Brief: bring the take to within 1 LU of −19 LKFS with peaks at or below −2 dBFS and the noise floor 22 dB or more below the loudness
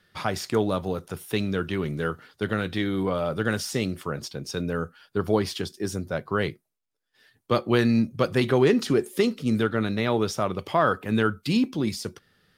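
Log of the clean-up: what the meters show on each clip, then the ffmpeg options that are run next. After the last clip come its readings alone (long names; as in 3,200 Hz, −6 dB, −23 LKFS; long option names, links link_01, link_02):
integrated loudness −26.0 LKFS; sample peak −7.5 dBFS; target loudness −19.0 LKFS
→ -af "volume=7dB,alimiter=limit=-2dB:level=0:latency=1"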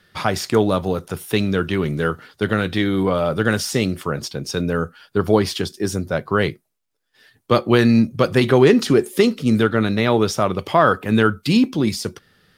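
integrated loudness −19.0 LKFS; sample peak −2.0 dBFS; background noise floor −69 dBFS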